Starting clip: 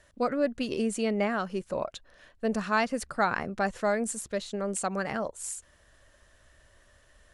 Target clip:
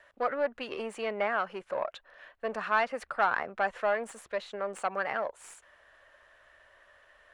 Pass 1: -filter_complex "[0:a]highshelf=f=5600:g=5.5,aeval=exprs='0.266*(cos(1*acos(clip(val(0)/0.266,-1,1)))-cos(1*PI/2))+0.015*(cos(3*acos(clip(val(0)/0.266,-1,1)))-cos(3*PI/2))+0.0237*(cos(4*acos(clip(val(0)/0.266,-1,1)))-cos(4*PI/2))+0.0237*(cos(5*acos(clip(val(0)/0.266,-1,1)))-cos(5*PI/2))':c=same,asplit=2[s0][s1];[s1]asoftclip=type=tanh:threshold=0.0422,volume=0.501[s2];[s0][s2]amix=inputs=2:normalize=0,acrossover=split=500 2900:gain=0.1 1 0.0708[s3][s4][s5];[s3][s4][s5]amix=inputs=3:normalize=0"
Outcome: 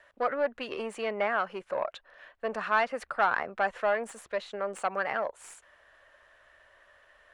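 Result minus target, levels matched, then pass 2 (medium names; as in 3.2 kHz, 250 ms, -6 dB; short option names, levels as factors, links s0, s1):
saturation: distortion -5 dB
-filter_complex "[0:a]highshelf=f=5600:g=5.5,aeval=exprs='0.266*(cos(1*acos(clip(val(0)/0.266,-1,1)))-cos(1*PI/2))+0.015*(cos(3*acos(clip(val(0)/0.266,-1,1)))-cos(3*PI/2))+0.0237*(cos(4*acos(clip(val(0)/0.266,-1,1)))-cos(4*PI/2))+0.0237*(cos(5*acos(clip(val(0)/0.266,-1,1)))-cos(5*PI/2))':c=same,asplit=2[s0][s1];[s1]asoftclip=type=tanh:threshold=0.0133,volume=0.501[s2];[s0][s2]amix=inputs=2:normalize=0,acrossover=split=500 2900:gain=0.1 1 0.0708[s3][s4][s5];[s3][s4][s5]amix=inputs=3:normalize=0"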